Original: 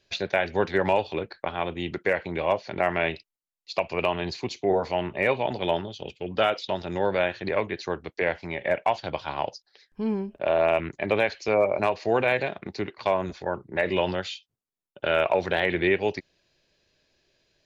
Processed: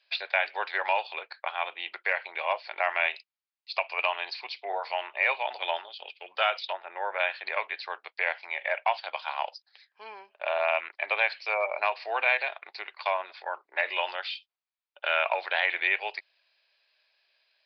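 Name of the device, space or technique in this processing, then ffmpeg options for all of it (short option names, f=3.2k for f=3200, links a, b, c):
musical greeting card: -filter_complex "[0:a]asplit=3[a][b][c];[a]afade=t=out:st=6.72:d=0.02[d];[b]lowpass=f=2.2k:w=0.5412,lowpass=f=2.2k:w=1.3066,afade=t=in:st=6.72:d=0.02,afade=t=out:st=7.18:d=0.02[e];[c]afade=t=in:st=7.18:d=0.02[f];[d][e][f]amix=inputs=3:normalize=0,aresample=11025,aresample=44100,highpass=f=740:w=0.5412,highpass=f=740:w=1.3066,equalizer=f=2.4k:t=o:w=0.24:g=4.5"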